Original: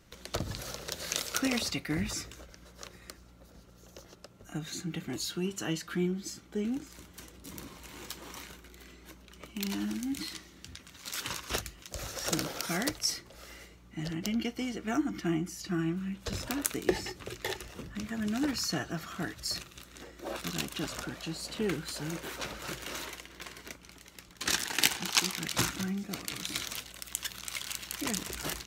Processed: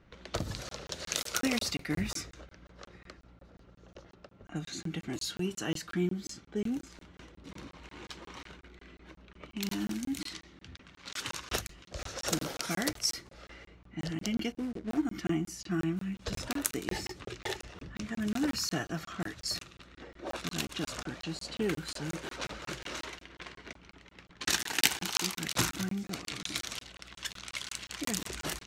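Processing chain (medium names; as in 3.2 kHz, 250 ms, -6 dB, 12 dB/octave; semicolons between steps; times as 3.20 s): 14.52–15.05 s: median filter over 41 samples; level-controlled noise filter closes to 2.4 kHz, open at -30.5 dBFS; crackling interface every 0.18 s, samples 1024, zero, from 0.69 s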